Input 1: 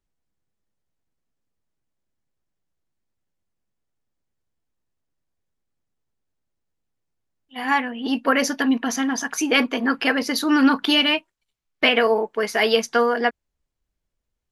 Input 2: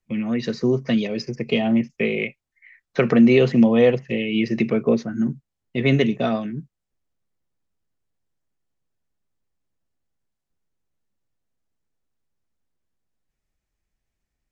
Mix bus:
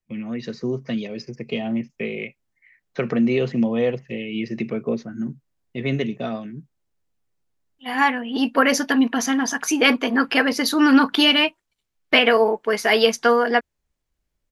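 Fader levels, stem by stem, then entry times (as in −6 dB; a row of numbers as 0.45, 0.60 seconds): +2.0, −5.5 decibels; 0.30, 0.00 seconds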